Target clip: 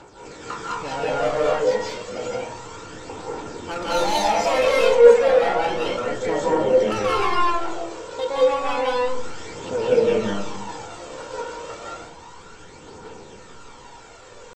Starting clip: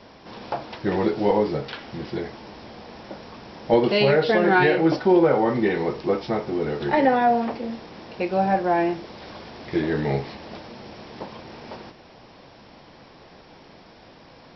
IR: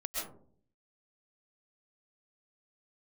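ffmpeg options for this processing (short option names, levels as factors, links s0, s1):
-filter_complex "[0:a]aecho=1:1:3.2:0.34,acontrast=44,asoftclip=type=tanh:threshold=0.168,aphaser=in_gain=1:out_gain=1:delay=3.1:decay=0.56:speed=0.31:type=triangular,asetrate=64194,aresample=44100,atempo=0.686977[s0];[1:a]atrim=start_sample=2205,asetrate=32193,aresample=44100[s1];[s0][s1]afir=irnorm=-1:irlink=0,volume=0.398"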